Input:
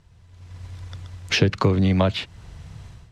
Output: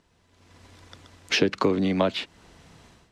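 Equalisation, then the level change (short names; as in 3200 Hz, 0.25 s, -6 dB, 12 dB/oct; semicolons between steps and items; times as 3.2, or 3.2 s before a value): resonant low shelf 170 Hz -13 dB, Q 1.5; -2.0 dB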